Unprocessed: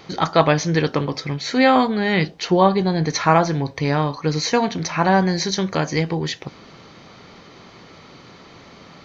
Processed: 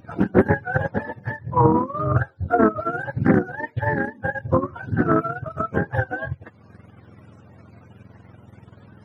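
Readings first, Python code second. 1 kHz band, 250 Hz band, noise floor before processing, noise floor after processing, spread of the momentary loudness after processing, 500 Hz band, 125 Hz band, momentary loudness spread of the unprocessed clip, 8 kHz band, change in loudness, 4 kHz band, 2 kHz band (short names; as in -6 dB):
-4.0 dB, -2.5 dB, -45 dBFS, -51 dBFS, 10 LU, -3.5 dB, -1.5 dB, 8 LU, n/a, -3.0 dB, under -25 dB, -2.0 dB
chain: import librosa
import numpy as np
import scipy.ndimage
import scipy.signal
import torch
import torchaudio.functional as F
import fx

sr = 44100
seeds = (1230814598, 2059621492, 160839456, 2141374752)

y = fx.octave_mirror(x, sr, pivot_hz=500.0)
y = fx.transient(y, sr, attack_db=6, sustain_db=-7)
y = fx.doppler_dist(y, sr, depth_ms=0.3)
y = y * librosa.db_to_amplitude(-3.5)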